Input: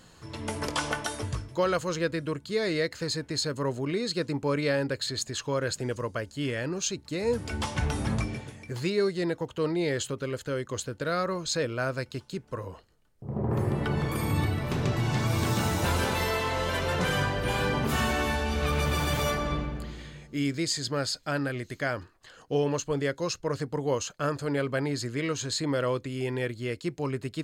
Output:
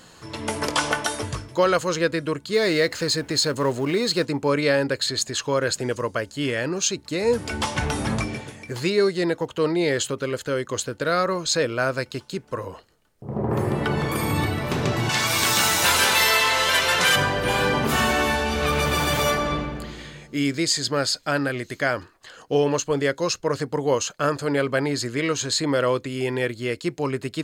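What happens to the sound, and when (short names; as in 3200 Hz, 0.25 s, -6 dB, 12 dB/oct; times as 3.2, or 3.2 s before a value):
2.53–4.25 G.711 law mismatch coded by mu
15.09–17.16 tilt shelf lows -8.5 dB, about 890 Hz
whole clip: low shelf 150 Hz -9.5 dB; gain +7.5 dB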